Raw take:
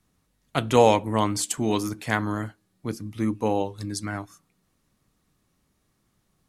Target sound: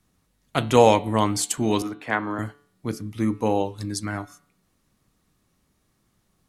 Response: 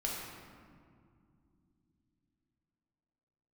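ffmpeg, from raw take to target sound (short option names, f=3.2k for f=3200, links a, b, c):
-filter_complex "[0:a]asettb=1/sr,asplit=3[a][b][c];[a]atrim=end=1.824[d];[b]atrim=start=1.82:end=2.39,asetpts=PTS-STARTPTS,afade=t=in:d=0.004:c=qsin,afade=t=out:st=0.566:d=0.004:c=qsin,acrossover=split=240 3000:gain=0.224 1 0.126[e][f][g];[e][f][g]amix=inputs=3:normalize=0[h];[c]atrim=start=2.386[i];[d][h]acrossfade=d=0.004:c1=hsin:c2=qsin[j];[j][i]acrossfade=d=0.004:c1=qsin:c2=hsin,bandreject=f=144.5:t=h:w=4,bandreject=f=289:t=h:w=4,bandreject=f=433.5:t=h:w=4,bandreject=f=578:t=h:w=4,bandreject=f=722.5:t=h:w=4,bandreject=f=867:t=h:w=4,bandreject=f=1.0115k:t=h:w=4,bandreject=f=1.156k:t=h:w=4,bandreject=f=1.3005k:t=h:w=4,bandreject=f=1.445k:t=h:w=4,bandreject=f=1.5895k:t=h:w=4,bandreject=f=1.734k:t=h:w=4,bandreject=f=1.8785k:t=h:w=4,bandreject=f=2.023k:t=h:w=4,bandreject=f=2.1675k:t=h:w=4,bandreject=f=2.312k:t=h:w=4,bandreject=f=2.4565k:t=h:w=4,bandreject=f=2.601k:t=h:w=4,bandreject=f=2.7455k:t=h:w=4,bandreject=f=2.89k:t=h:w=4,bandreject=f=3.0345k:t=h:w=4,bandreject=f=3.179k:t=h:w=4,bandreject=f=3.3235k:t=h:w=4,bandreject=f=3.468k:t=h:w=4,bandreject=f=3.6125k:t=h:w=4,bandreject=f=3.757k:t=h:w=4,bandreject=f=3.9015k:t=h:w=4,bandreject=f=4.046k:t=h:w=4,bandreject=f=4.1905k:t=h:w=4,bandreject=f=4.335k:t=h:w=4,volume=2dB"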